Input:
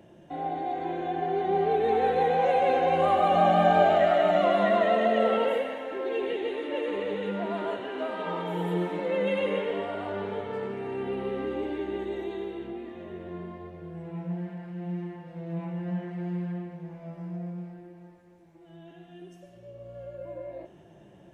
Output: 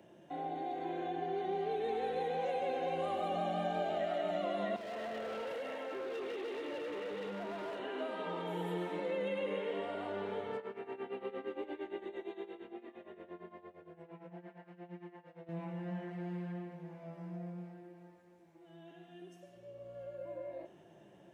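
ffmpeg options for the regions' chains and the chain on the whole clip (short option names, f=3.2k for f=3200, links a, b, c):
-filter_complex "[0:a]asettb=1/sr,asplit=3[a][b][c];[a]atrim=end=4.764[d];[b]atrim=start=4.76:end=7.79,asetpts=PTS-STARTPTS,afade=t=in:d=0.004:c=qsin,afade=t=out:st=3.026:d=0.004:c=qsin,acompressor=threshold=-30dB:ratio=3:attack=3.2:release=140:knee=1:detection=peak,highpass=f=160:w=0.5412,highpass=f=160:w=1.3066,asoftclip=type=hard:threshold=-32dB[e];[c]atrim=start=7.786[f];[d][e]acrossfade=d=0.004:c1=hsin:c2=qsin[g];[g][f]acrossfade=d=0.004:c1=qsin:c2=hsin,asettb=1/sr,asplit=3[h][i][j];[h]atrim=end=10.574[k];[i]atrim=start=10.57:end=15.49,asetpts=PTS-STARTPTS,afade=t=in:d=0.004:c=qsin,afade=t=out:st=4.916:d=0.004:c=qsin,bass=f=250:g=-9,treble=f=4k:g=-7,tremolo=f=8.7:d=0.83[l];[j]atrim=start=15.486[m];[k][l]acrossfade=d=0.004:c1=hsin:c2=qsin[n];[n][m]acrossfade=d=0.004:c1=qsin:c2=hsin,highpass=f=230:p=1,acrossover=split=520|2700[o][p][q];[o]acompressor=threshold=-33dB:ratio=4[r];[p]acompressor=threshold=-38dB:ratio=4[s];[q]acompressor=threshold=-49dB:ratio=4[t];[r][s][t]amix=inputs=3:normalize=0,volume=-4dB"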